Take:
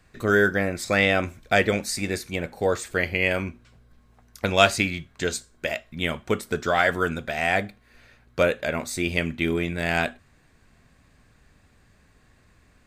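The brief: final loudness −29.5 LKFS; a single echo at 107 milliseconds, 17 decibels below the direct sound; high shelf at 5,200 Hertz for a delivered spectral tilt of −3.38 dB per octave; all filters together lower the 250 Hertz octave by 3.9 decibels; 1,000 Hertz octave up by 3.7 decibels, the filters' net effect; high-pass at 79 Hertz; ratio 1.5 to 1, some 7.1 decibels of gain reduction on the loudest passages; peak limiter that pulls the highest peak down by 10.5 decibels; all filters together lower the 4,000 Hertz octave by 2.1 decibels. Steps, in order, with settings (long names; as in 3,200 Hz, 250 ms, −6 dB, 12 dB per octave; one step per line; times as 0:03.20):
high-pass filter 79 Hz
parametric band 250 Hz −6 dB
parametric band 1,000 Hz +6.5 dB
parametric band 4,000 Hz −6 dB
high-shelf EQ 5,200 Hz +7 dB
downward compressor 1.5 to 1, threshold −29 dBFS
brickwall limiter −16.5 dBFS
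single-tap delay 107 ms −17 dB
level +1 dB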